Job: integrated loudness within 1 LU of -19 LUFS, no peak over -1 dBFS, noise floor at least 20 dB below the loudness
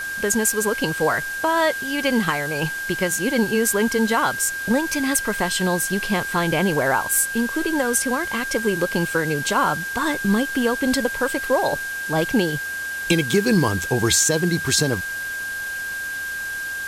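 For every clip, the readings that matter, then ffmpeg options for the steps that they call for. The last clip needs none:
steady tone 1600 Hz; tone level -26 dBFS; noise floor -29 dBFS; noise floor target -41 dBFS; loudness -21.0 LUFS; peak -4.0 dBFS; loudness target -19.0 LUFS
-> -af "bandreject=f=1.6k:w=30"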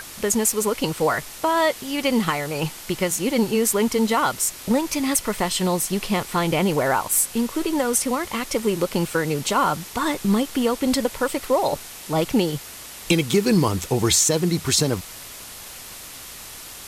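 steady tone none; noise floor -39 dBFS; noise floor target -42 dBFS
-> -af "afftdn=nr=6:nf=-39"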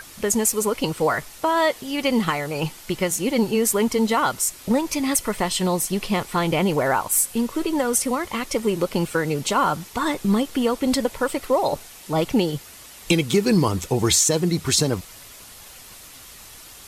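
noise floor -44 dBFS; loudness -22.0 LUFS; peak -4.5 dBFS; loudness target -19.0 LUFS
-> -af "volume=3dB"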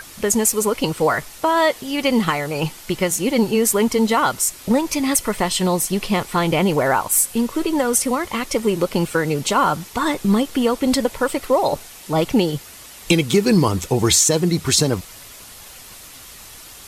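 loudness -19.0 LUFS; peak -1.5 dBFS; noise floor -41 dBFS

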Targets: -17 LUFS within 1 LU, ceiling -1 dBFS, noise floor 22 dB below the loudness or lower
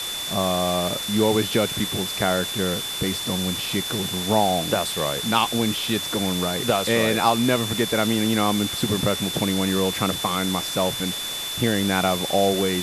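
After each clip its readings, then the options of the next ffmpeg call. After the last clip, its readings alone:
steady tone 3500 Hz; tone level -29 dBFS; noise floor -30 dBFS; noise floor target -44 dBFS; loudness -22.0 LUFS; peak -4.0 dBFS; loudness target -17.0 LUFS
-> -af "bandreject=f=3.5k:w=30"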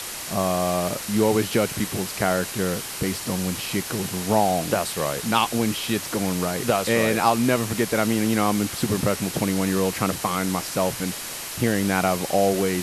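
steady tone none; noise floor -33 dBFS; noise floor target -46 dBFS
-> -af "afftdn=nr=13:nf=-33"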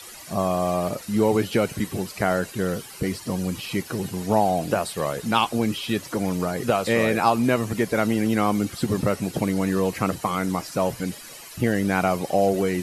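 noise floor -42 dBFS; noise floor target -46 dBFS
-> -af "afftdn=nr=6:nf=-42"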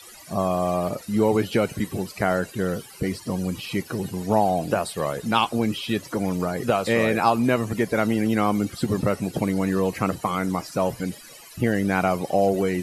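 noise floor -45 dBFS; noise floor target -46 dBFS
-> -af "afftdn=nr=6:nf=-45"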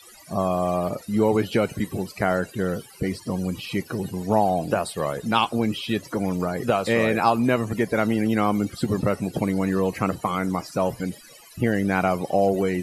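noise floor -48 dBFS; loudness -24.0 LUFS; peak -5.0 dBFS; loudness target -17.0 LUFS
-> -af "volume=7dB,alimiter=limit=-1dB:level=0:latency=1"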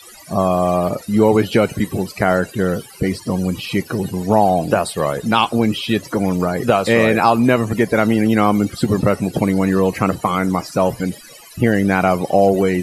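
loudness -17.5 LUFS; peak -1.0 dBFS; noise floor -41 dBFS

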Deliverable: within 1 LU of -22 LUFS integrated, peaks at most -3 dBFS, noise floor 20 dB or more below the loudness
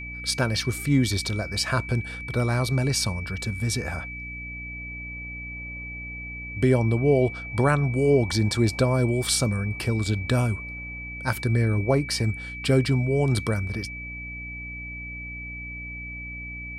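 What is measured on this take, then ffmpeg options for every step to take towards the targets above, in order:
hum 60 Hz; harmonics up to 300 Hz; hum level -38 dBFS; steady tone 2300 Hz; tone level -35 dBFS; loudness -25.5 LUFS; peak -8.0 dBFS; loudness target -22.0 LUFS
-> -af "bandreject=f=60:t=h:w=6,bandreject=f=120:t=h:w=6,bandreject=f=180:t=h:w=6,bandreject=f=240:t=h:w=6,bandreject=f=300:t=h:w=6"
-af "bandreject=f=2.3k:w=30"
-af "volume=3.5dB"

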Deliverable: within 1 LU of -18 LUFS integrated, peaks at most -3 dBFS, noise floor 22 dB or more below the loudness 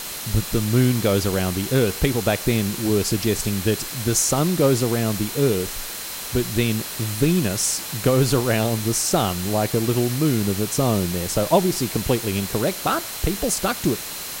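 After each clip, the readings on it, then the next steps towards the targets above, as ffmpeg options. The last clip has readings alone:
steady tone 4100 Hz; tone level -42 dBFS; noise floor -32 dBFS; noise floor target -44 dBFS; loudness -21.5 LUFS; peak -4.5 dBFS; loudness target -18.0 LUFS
-> -af "bandreject=f=4.1k:w=30"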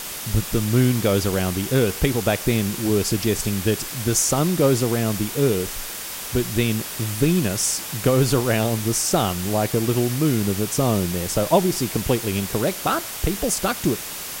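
steady tone none; noise floor -32 dBFS; noise floor target -44 dBFS
-> -af "afftdn=nr=12:nf=-32"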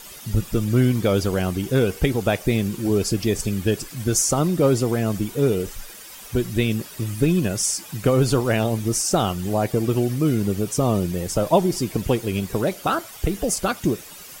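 noise floor -41 dBFS; noise floor target -44 dBFS
-> -af "afftdn=nr=6:nf=-41"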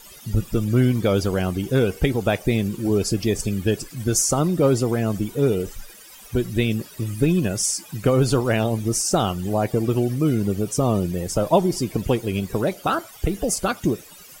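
noise floor -45 dBFS; loudness -22.0 LUFS; peak -5.0 dBFS; loudness target -18.0 LUFS
-> -af "volume=4dB,alimiter=limit=-3dB:level=0:latency=1"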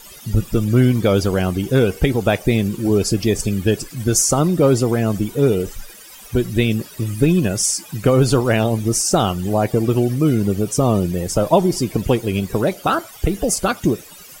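loudness -18.0 LUFS; peak -3.0 dBFS; noise floor -41 dBFS

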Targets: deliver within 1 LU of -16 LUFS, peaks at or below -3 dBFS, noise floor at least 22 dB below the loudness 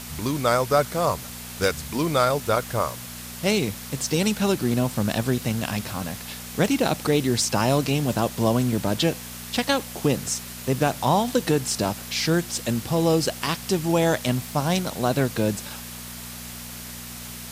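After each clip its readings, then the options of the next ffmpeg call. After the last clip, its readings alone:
hum 60 Hz; harmonics up to 240 Hz; hum level -40 dBFS; noise floor -38 dBFS; noise floor target -46 dBFS; loudness -24.0 LUFS; peak -6.5 dBFS; loudness target -16.0 LUFS
-> -af "bandreject=f=60:t=h:w=4,bandreject=f=120:t=h:w=4,bandreject=f=180:t=h:w=4,bandreject=f=240:t=h:w=4"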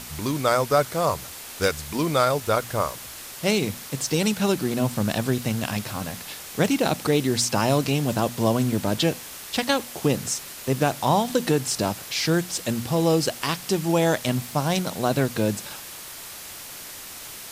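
hum none; noise floor -39 dBFS; noise floor target -46 dBFS
-> -af "afftdn=nr=7:nf=-39"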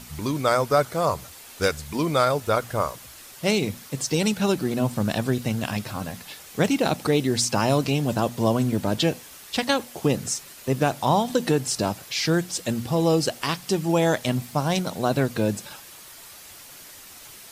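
noise floor -45 dBFS; noise floor target -46 dBFS
-> -af "afftdn=nr=6:nf=-45"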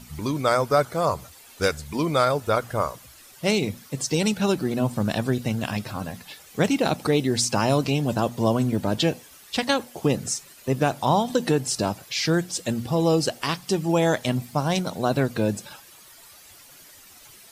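noise floor -49 dBFS; loudness -24.0 LUFS; peak -6.5 dBFS; loudness target -16.0 LUFS
-> -af "volume=8dB,alimiter=limit=-3dB:level=0:latency=1"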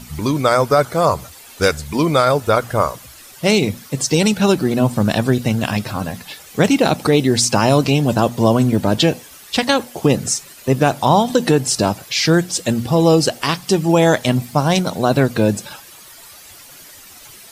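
loudness -16.5 LUFS; peak -3.0 dBFS; noise floor -41 dBFS

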